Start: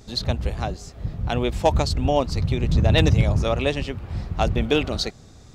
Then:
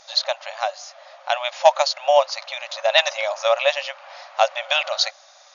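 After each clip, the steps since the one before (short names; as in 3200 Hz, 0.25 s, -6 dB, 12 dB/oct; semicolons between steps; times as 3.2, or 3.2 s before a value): FFT band-pass 530–7000 Hz; gain +6.5 dB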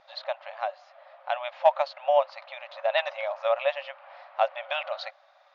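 air absorption 440 m; gain -4.5 dB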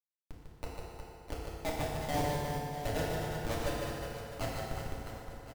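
Schmitt trigger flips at -19 dBFS; on a send: reverse bouncing-ball echo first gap 0.15 s, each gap 1.4×, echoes 5; on the sum: FDN reverb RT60 2.7 s, low-frequency decay 0.8×, high-frequency decay 0.7×, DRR -5 dB; gain -6 dB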